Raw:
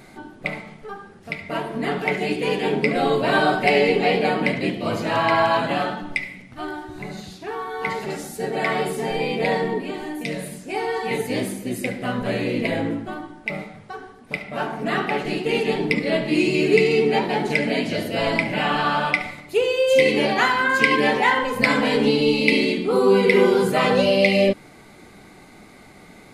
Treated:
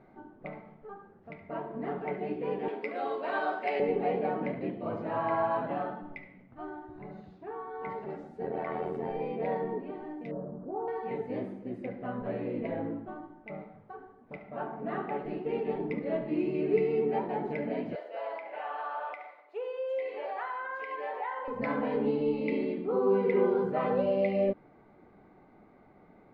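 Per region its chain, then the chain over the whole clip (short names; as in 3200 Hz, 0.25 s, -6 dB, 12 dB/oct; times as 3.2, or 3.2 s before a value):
2.68–3.8 HPF 220 Hz 24 dB/oct + tilt +4 dB/oct
8.41–9.11 AM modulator 84 Hz, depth 55% + fast leveller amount 70%
10.31–10.88 elliptic low-pass 1300 Hz, stop band 50 dB + fast leveller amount 50%
17.95–21.48 HPF 530 Hz 24 dB/oct + compressor 2:1, threshold -22 dBFS
whole clip: LPF 1000 Hz 12 dB/oct; low shelf 280 Hz -6 dB; gain -7.5 dB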